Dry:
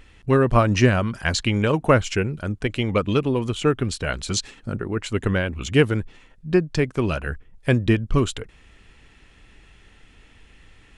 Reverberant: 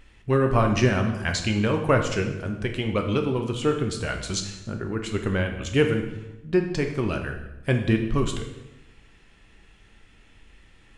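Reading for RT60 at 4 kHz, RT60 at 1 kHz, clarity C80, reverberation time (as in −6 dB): 0.80 s, 0.95 s, 9.5 dB, 0.95 s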